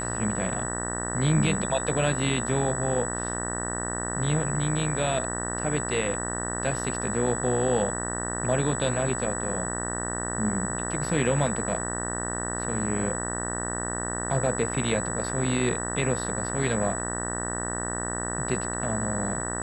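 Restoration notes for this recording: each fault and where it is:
buzz 60 Hz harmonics 32 -33 dBFS
whine 7.9 kHz -32 dBFS

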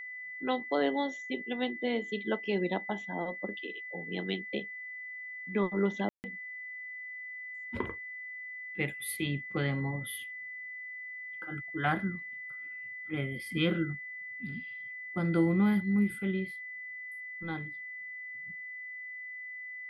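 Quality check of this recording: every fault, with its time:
whine 2 kHz -40 dBFS
6.09–6.24 s: dropout 149 ms

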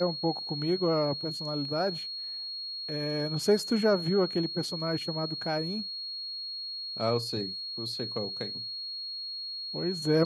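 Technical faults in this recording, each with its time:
whine 4.3 kHz -35 dBFS

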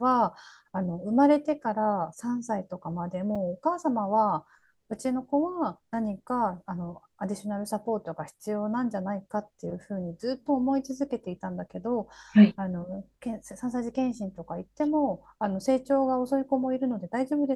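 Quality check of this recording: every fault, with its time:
3.35 s: dropout 5 ms

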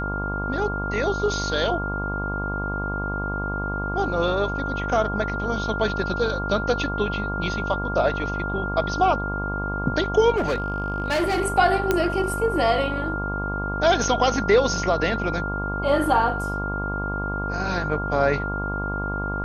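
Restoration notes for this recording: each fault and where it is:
buzz 50 Hz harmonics 23 -29 dBFS
whine 1.4 kHz -28 dBFS
10.36–11.41 s: clipped -19 dBFS
11.91 s: pop -7 dBFS

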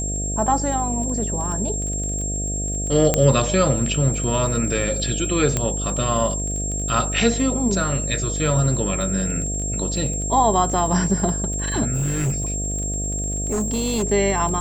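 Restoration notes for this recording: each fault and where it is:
buzz 50 Hz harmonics 14 -27 dBFS
crackle 23 per s -28 dBFS
whine 7.5 kHz -26 dBFS
3.14 s: pop -3 dBFS
5.57 s: pop -7 dBFS
11.93–14.04 s: clipped -18.5 dBFS

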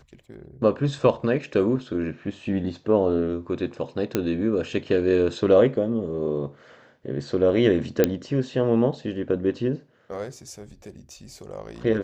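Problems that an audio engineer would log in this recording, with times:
4.15 s: pop -8 dBFS
8.04 s: pop -5 dBFS

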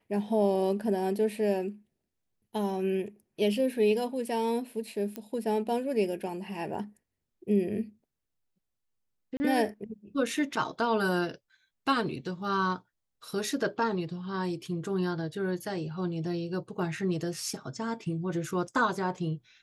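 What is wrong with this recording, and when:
5.16 s: pop -20 dBFS
9.37–9.40 s: dropout 30 ms

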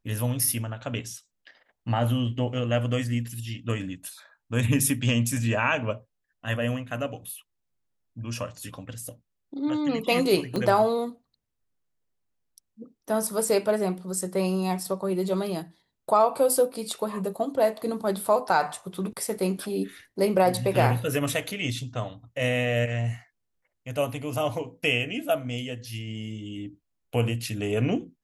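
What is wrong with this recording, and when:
10.56 s: pop -16 dBFS

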